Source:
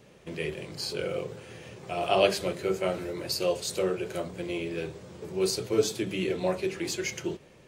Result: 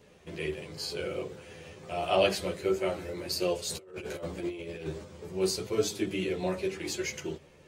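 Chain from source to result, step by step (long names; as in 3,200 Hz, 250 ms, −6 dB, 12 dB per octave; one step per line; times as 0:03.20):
0:03.69–0:05.04: compressor whose output falls as the input rises −36 dBFS, ratio −0.5
multi-voice chorus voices 4, 0.31 Hz, delay 12 ms, depth 2.1 ms
level +1 dB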